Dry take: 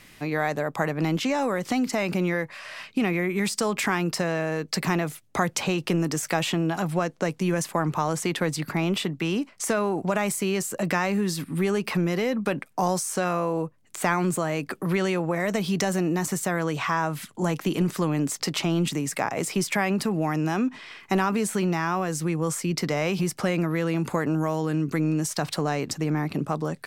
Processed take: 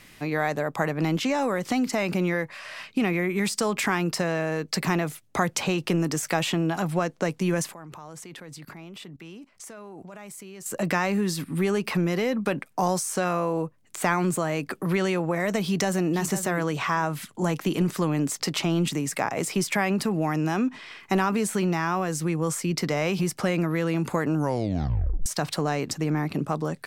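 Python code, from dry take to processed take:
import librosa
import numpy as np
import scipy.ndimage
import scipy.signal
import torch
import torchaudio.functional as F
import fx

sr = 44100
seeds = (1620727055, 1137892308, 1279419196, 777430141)

y = fx.level_steps(x, sr, step_db=21, at=(7.74, 10.66))
y = fx.echo_throw(y, sr, start_s=15.63, length_s=0.5, ms=500, feedback_pct=15, wet_db=-10.5)
y = fx.edit(y, sr, fx.tape_stop(start_s=24.36, length_s=0.9), tone=tone)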